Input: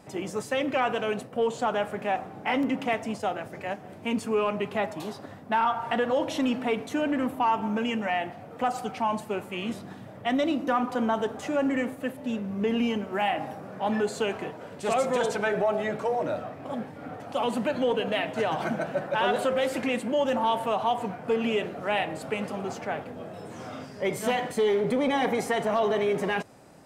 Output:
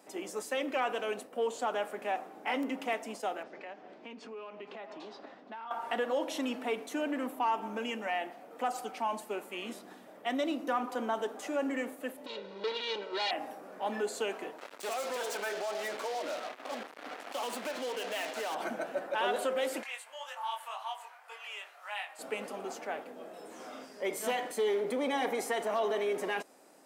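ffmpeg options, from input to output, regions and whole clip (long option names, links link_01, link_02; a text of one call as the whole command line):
ffmpeg -i in.wav -filter_complex "[0:a]asettb=1/sr,asplit=3[link_01][link_02][link_03];[link_01]atrim=end=3.434[link_04];[link_02]atrim=start=3.43:end=5.71,asetpts=PTS-STARTPTS,afade=type=in:duration=0.004:curve=qsin,afade=type=out:start_time=2.276:duration=0.004:curve=qsin,lowpass=frequency=5000:width=0.5412,lowpass=frequency=5000:width=1.3066,aecho=1:1:472:0.0668,atrim=end_sample=100548,acompressor=threshold=-34dB:ratio=12:attack=3.2:release=140:knee=1:detection=peak[link_05];[link_03]atrim=start=5.706[link_06];[link_04][link_05]acrossfade=duration=0.004:curve1=hsin:curve2=qsin[link_07];[link_07][link_06]acrossfade=duration=0.004:curve1=qsin:curve2=hsin,asettb=1/sr,asplit=3[link_08][link_09][link_10];[link_08]atrim=end=12.264[link_11];[link_09]atrim=start=12.26:end=13.31,asetpts=PTS-STARTPTS,afade=type=in:duration=0.004:curve=qsin,afade=type=out:start_time=1.046:duration=0.004:curve=qsin,asoftclip=type=hard:threshold=-28.5dB,lowpass=frequency=4000:width_type=q:width=5.5,aecho=1:1:2.1:0.88,atrim=end_sample=46305[link_12];[link_10]atrim=start=13.306[link_13];[link_11][link_12]acrossfade=duration=0.004:curve1=hsin:curve2=qsin[link_14];[link_14][link_13]acrossfade=duration=0.004:curve1=qsin:curve2=hsin,asettb=1/sr,asplit=3[link_15][link_16][link_17];[link_15]atrim=end=14.584[link_18];[link_16]atrim=start=14.58:end=18.55,asetpts=PTS-STARTPTS,afade=type=in:duration=0.004:curve=qsin,afade=type=out:start_time=3.966:duration=0.004:curve=qsin,acompressor=threshold=-27dB:ratio=6:attack=3.2:release=140:knee=1:detection=peak,acrusher=bits=5:mix=0:aa=0.5,asplit=2[link_19][link_20];[link_20]highpass=frequency=720:poles=1,volume=9dB,asoftclip=type=tanh:threshold=-20dB[link_21];[link_19][link_21]amix=inputs=2:normalize=0,lowpass=frequency=5900:poles=1,volume=-6dB[link_22];[link_17]atrim=start=18.546[link_23];[link_18][link_22]acrossfade=duration=0.004:curve1=hsin:curve2=qsin[link_24];[link_24][link_23]acrossfade=duration=0.004:curve1=qsin:curve2=hsin,asettb=1/sr,asplit=3[link_25][link_26][link_27];[link_25]atrim=end=19.834[link_28];[link_26]atrim=start=19.83:end=22.19,asetpts=PTS-STARTPTS,afade=type=in:duration=0.004:curve=qsin,afade=type=out:start_time=2.356:duration=0.004:curve=qsin,highpass=frequency=890:width=0.5412,highpass=frequency=890:width=1.3066,flanger=delay=19:depth=3.7:speed=1.9[link_29];[link_27]atrim=start=22.186[link_30];[link_28][link_29]acrossfade=duration=0.004:curve1=hsin:curve2=qsin[link_31];[link_31][link_30]acrossfade=duration=0.004:curve1=qsin:curve2=hsin,highpass=frequency=260:width=0.5412,highpass=frequency=260:width=1.3066,highshelf=frequency=7700:gain=9,volume=-6dB" out.wav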